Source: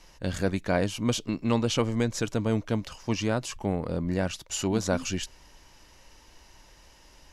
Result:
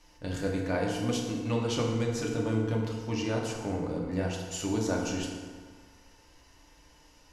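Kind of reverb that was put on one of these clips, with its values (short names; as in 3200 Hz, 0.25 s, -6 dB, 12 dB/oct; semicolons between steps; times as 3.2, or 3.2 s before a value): FDN reverb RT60 1.7 s, low-frequency decay 0.95×, high-frequency decay 0.6×, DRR -2 dB; gain -7.5 dB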